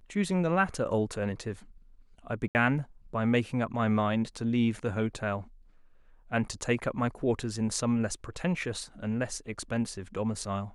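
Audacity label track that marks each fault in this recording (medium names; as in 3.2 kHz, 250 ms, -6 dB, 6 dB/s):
2.480000	2.550000	dropout 69 ms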